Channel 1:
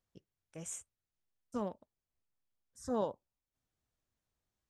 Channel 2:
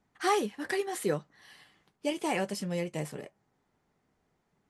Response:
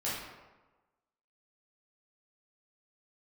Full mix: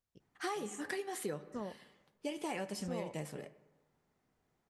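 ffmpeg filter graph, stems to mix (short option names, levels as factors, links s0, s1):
-filter_complex "[0:a]volume=0.596,asplit=2[s0][s1];[s1]volume=0.0668[s2];[1:a]adelay=200,volume=0.562,asplit=2[s3][s4];[s4]volume=0.112[s5];[2:a]atrim=start_sample=2205[s6];[s2][s5]amix=inputs=2:normalize=0[s7];[s7][s6]afir=irnorm=-1:irlink=0[s8];[s0][s3][s8]amix=inputs=3:normalize=0,acompressor=threshold=0.0178:ratio=6"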